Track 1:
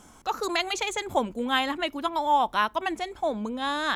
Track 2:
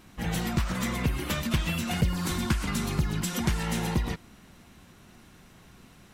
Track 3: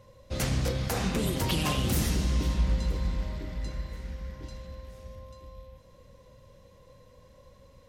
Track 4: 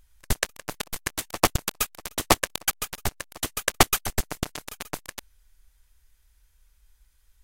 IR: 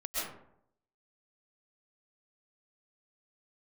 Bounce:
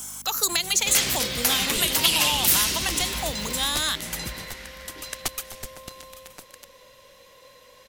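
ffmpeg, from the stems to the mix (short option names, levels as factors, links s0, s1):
-filter_complex "[0:a]aeval=exprs='val(0)+0.0112*(sin(2*PI*50*n/s)+sin(2*PI*2*50*n/s)/2+sin(2*PI*3*50*n/s)/3+sin(2*PI*4*50*n/s)/4+sin(2*PI*5*50*n/s)/5)':c=same,aemphasis=mode=production:type=riaa,acrossover=split=400[s0][s1];[s1]acompressor=threshold=0.0501:ratio=6[s2];[s0][s2]amix=inputs=2:normalize=0,volume=1.26,asplit=2[s3][s4];[1:a]highshelf=f=5300:g=11.5,adelay=300,volume=0.316[s5];[2:a]acrossover=split=270 3200:gain=0.178 1 0.158[s6][s7][s8];[s6][s7][s8]amix=inputs=3:normalize=0,crystalizer=i=7.5:c=0,adelay=550,volume=1.33[s9];[3:a]adelay=1450,volume=0.178[s10];[s4]apad=whole_len=283913[s11];[s5][s11]sidechaincompress=threshold=0.0501:ratio=8:attack=23:release=927[s12];[s3][s12][s9][s10]amix=inputs=4:normalize=0,acrossover=split=260|3000[s13][s14][s15];[s14]acompressor=threshold=0.02:ratio=2[s16];[s13][s16][s15]amix=inputs=3:normalize=0,highshelf=f=2000:g=8"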